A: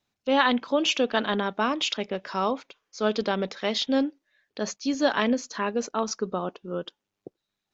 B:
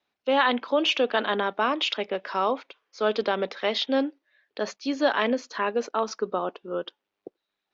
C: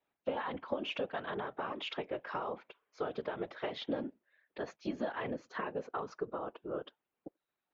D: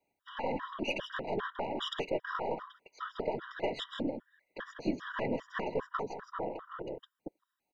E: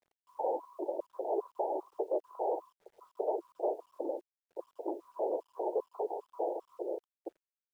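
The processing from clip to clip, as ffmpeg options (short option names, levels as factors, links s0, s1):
-filter_complex "[0:a]acrossover=split=280 4600:gain=0.178 1 0.0891[s0][s1][s2];[s0][s1][s2]amix=inputs=3:normalize=0,asplit=2[s3][s4];[s4]alimiter=limit=0.126:level=0:latency=1:release=21,volume=1[s5];[s3][s5]amix=inputs=2:normalize=0,volume=0.708"
-af "equalizer=f=5200:t=o:w=1.4:g=-13.5,acompressor=threshold=0.0316:ratio=10,afftfilt=real='hypot(re,im)*cos(2*PI*random(0))':imag='hypot(re,im)*sin(2*PI*random(1))':win_size=512:overlap=0.75,volume=1.26"
-af "aeval=exprs='0.0794*(cos(1*acos(clip(val(0)/0.0794,-1,1)))-cos(1*PI/2))+0.00501*(cos(6*acos(clip(val(0)/0.0794,-1,1)))-cos(6*PI/2))':c=same,aecho=1:1:160:0.422,afftfilt=real='re*gt(sin(2*PI*2.5*pts/sr)*(1-2*mod(floor(b*sr/1024/970),2)),0)':imag='im*gt(sin(2*PI*2.5*pts/sr)*(1-2*mod(floor(b*sr/1024/970),2)),0)':win_size=1024:overlap=0.75,volume=1.78"
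-af "aeval=exprs='0.119*sin(PI/2*2.24*val(0)/0.119)':c=same,asuperpass=centerf=550:order=12:qfactor=0.98,acrusher=bits=10:mix=0:aa=0.000001,volume=0.501"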